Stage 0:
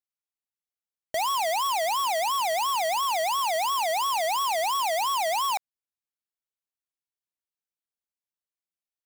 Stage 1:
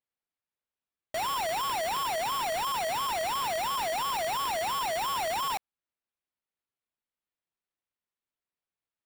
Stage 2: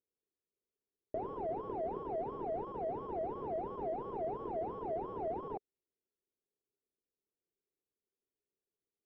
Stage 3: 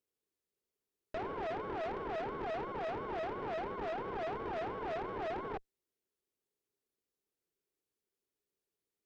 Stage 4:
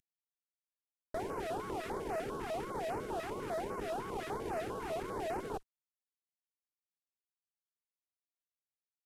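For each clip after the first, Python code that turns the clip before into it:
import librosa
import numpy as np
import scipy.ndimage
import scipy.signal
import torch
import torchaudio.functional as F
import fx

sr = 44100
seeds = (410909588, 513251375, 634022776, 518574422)

y1 = fx.sample_hold(x, sr, seeds[0], rate_hz=6400.0, jitter_pct=0)
y1 = F.gain(torch.from_numpy(y1), -4.5).numpy()
y2 = fx.lowpass_res(y1, sr, hz=410.0, q=4.9)
y2 = F.gain(torch.from_numpy(y2), -1.5).numpy()
y3 = fx.tube_stage(y2, sr, drive_db=43.0, bias=0.8)
y3 = F.gain(torch.from_numpy(y3), 7.5).numpy()
y4 = fx.cvsd(y3, sr, bps=64000)
y4 = fx.filter_held_notch(y4, sr, hz=10.0, low_hz=570.0, high_hz=3500.0)
y4 = F.gain(torch.from_numpy(y4), 2.0).numpy()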